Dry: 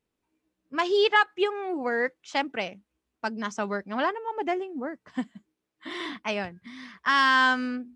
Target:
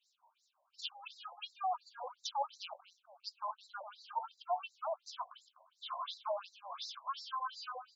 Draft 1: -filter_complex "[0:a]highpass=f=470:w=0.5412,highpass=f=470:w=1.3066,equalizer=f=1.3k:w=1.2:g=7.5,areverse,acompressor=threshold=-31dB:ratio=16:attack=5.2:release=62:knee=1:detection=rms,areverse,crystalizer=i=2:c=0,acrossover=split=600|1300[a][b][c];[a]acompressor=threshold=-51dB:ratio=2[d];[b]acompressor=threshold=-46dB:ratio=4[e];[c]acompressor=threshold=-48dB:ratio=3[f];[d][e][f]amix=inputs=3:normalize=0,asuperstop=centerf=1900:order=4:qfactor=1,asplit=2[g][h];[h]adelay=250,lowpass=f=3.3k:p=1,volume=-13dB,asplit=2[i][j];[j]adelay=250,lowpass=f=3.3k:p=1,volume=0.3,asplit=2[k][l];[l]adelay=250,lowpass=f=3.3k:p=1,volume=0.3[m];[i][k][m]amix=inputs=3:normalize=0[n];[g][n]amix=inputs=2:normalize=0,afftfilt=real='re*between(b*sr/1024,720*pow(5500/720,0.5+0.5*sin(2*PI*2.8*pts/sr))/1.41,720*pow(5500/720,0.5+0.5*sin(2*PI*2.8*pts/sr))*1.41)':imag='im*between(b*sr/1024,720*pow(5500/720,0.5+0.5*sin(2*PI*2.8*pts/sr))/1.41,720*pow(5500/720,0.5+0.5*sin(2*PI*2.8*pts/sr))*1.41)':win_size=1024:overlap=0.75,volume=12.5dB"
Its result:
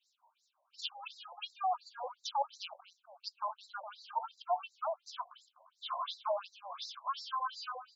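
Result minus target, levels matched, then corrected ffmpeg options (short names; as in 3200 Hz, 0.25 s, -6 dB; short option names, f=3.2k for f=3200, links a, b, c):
compressor: peak gain reduction -7.5 dB
-filter_complex "[0:a]highpass=f=470:w=0.5412,highpass=f=470:w=1.3066,equalizer=f=1.3k:w=1.2:g=7.5,areverse,acompressor=threshold=-39dB:ratio=16:attack=5.2:release=62:knee=1:detection=rms,areverse,crystalizer=i=2:c=0,acrossover=split=600|1300[a][b][c];[a]acompressor=threshold=-51dB:ratio=2[d];[b]acompressor=threshold=-46dB:ratio=4[e];[c]acompressor=threshold=-48dB:ratio=3[f];[d][e][f]amix=inputs=3:normalize=0,asuperstop=centerf=1900:order=4:qfactor=1,asplit=2[g][h];[h]adelay=250,lowpass=f=3.3k:p=1,volume=-13dB,asplit=2[i][j];[j]adelay=250,lowpass=f=3.3k:p=1,volume=0.3,asplit=2[k][l];[l]adelay=250,lowpass=f=3.3k:p=1,volume=0.3[m];[i][k][m]amix=inputs=3:normalize=0[n];[g][n]amix=inputs=2:normalize=0,afftfilt=real='re*between(b*sr/1024,720*pow(5500/720,0.5+0.5*sin(2*PI*2.8*pts/sr))/1.41,720*pow(5500/720,0.5+0.5*sin(2*PI*2.8*pts/sr))*1.41)':imag='im*between(b*sr/1024,720*pow(5500/720,0.5+0.5*sin(2*PI*2.8*pts/sr))/1.41,720*pow(5500/720,0.5+0.5*sin(2*PI*2.8*pts/sr))*1.41)':win_size=1024:overlap=0.75,volume=12.5dB"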